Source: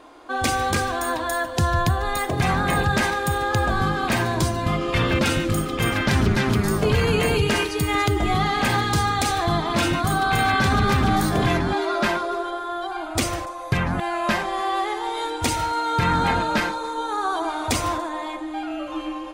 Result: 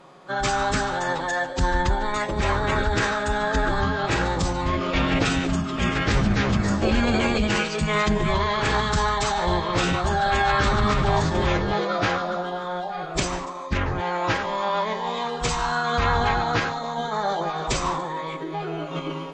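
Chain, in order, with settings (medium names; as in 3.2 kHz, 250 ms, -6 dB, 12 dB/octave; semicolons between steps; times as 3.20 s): formant-preserving pitch shift -11.5 st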